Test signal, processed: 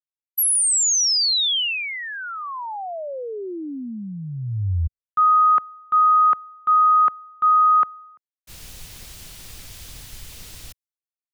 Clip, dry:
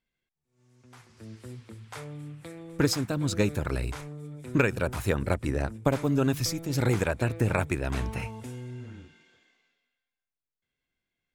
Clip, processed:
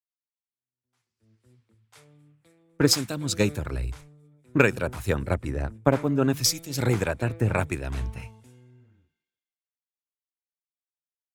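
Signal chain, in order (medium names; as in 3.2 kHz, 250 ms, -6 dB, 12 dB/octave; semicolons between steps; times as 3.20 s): three bands expanded up and down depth 100%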